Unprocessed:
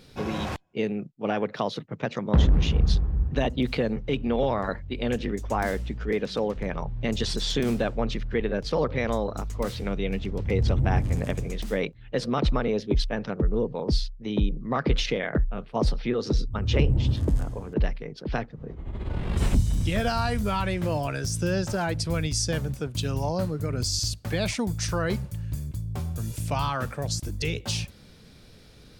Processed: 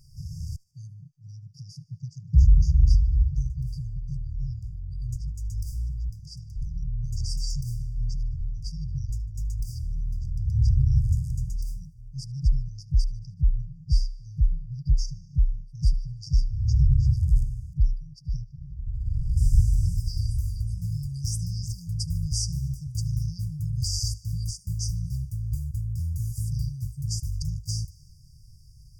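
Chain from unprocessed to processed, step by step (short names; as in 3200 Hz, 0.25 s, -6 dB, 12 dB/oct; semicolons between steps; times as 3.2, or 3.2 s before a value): brick-wall FIR band-stop 160–4600 Hz; low shelf 170 Hz +6.5 dB; thin delay 75 ms, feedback 67%, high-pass 2100 Hz, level -22.5 dB; gain -2 dB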